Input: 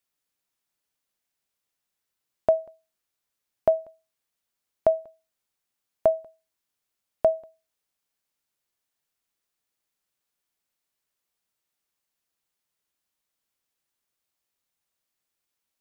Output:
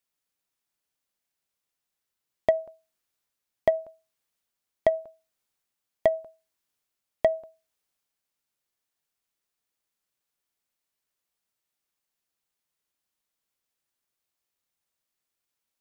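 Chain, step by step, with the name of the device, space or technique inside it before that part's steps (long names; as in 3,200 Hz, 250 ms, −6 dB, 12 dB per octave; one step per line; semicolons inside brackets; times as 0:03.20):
drum-bus smash (transient designer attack +8 dB, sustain +3 dB; downward compressor, threshold −11 dBFS, peak gain reduction 4.5 dB; soft clipping −9.5 dBFS, distortion −12 dB)
level −2 dB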